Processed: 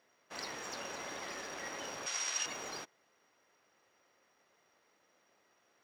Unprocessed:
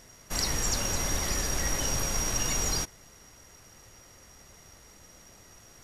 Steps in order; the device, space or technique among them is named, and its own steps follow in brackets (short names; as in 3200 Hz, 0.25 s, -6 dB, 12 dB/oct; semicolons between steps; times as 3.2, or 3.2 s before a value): phone line with mismatched companding (BPF 360–3300 Hz; G.711 law mismatch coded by A); 2.06–2.46 weighting filter ITU-R 468; gain -4.5 dB